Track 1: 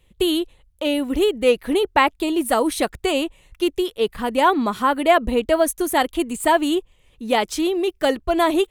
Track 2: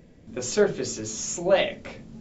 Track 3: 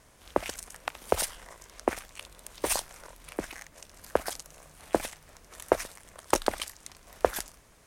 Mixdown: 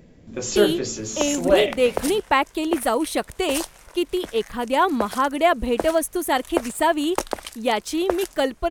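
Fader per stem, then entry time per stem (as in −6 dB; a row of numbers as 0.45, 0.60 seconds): −2.5, +2.5, 0.0 decibels; 0.35, 0.00, 0.85 seconds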